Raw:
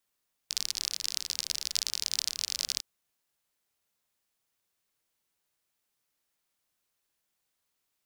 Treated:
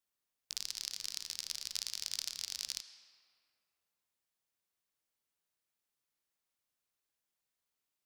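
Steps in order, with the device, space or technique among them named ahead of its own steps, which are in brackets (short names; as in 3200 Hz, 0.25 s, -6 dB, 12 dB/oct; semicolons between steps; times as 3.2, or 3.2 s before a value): filtered reverb send (on a send: HPF 410 Hz 6 dB/oct + LPF 7500 Hz + reverb RT60 2.5 s, pre-delay 72 ms, DRR 11 dB); on the sum: gain -8 dB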